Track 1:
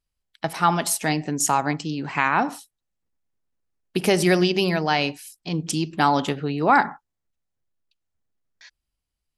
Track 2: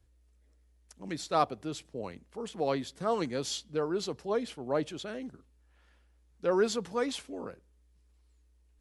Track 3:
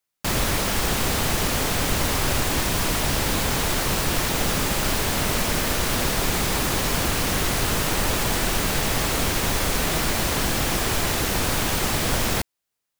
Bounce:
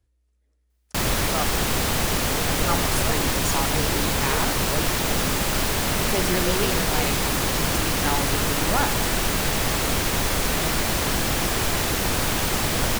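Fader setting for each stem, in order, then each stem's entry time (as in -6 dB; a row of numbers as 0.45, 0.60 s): -8.5, -3.0, 0.0 dB; 2.05, 0.00, 0.70 s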